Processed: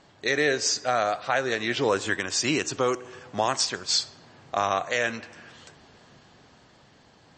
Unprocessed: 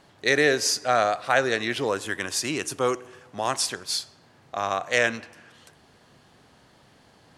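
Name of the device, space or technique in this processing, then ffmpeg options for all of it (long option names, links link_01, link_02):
low-bitrate web radio: -af "dynaudnorm=framelen=300:gausssize=11:maxgain=14dB,alimiter=limit=-11dB:level=0:latency=1:release=409" -ar 24000 -c:a libmp3lame -b:a 32k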